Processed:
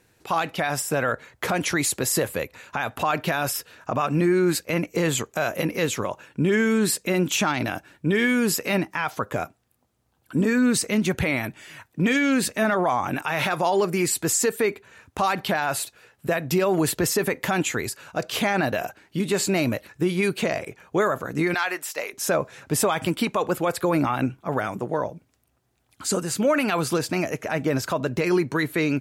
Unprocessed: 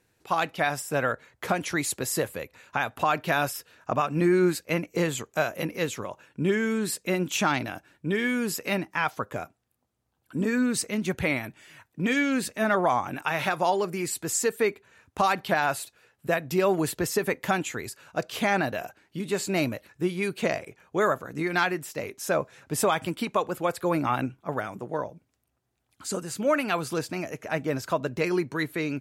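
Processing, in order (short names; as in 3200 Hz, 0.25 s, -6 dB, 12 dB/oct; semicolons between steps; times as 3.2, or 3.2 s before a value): 21.54–22.13 HPF 660 Hz 12 dB/oct; limiter -20.5 dBFS, peak gain reduction 9.5 dB; gain +7.5 dB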